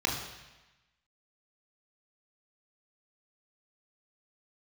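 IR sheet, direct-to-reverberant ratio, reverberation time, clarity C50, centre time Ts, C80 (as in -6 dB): -0.5 dB, 1.1 s, 4.5 dB, 42 ms, 7.0 dB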